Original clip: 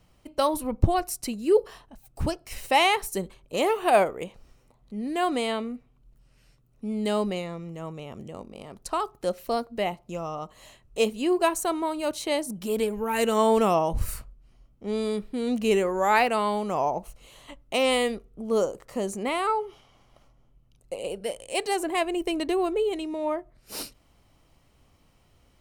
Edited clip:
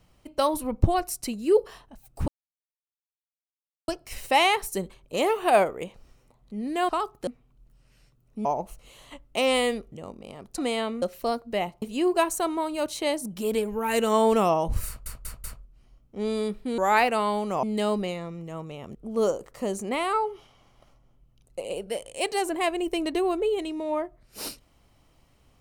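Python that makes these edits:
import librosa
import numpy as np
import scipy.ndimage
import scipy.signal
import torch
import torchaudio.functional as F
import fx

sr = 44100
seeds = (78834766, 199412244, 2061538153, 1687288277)

y = fx.edit(x, sr, fx.insert_silence(at_s=2.28, length_s=1.6),
    fx.swap(start_s=5.29, length_s=0.44, other_s=8.89, other_length_s=0.38),
    fx.swap(start_s=6.91, length_s=1.32, other_s=16.82, other_length_s=1.47),
    fx.cut(start_s=10.07, length_s=1.0),
    fx.stutter(start_s=14.12, slice_s=0.19, count=4),
    fx.cut(start_s=15.46, length_s=0.51), tone=tone)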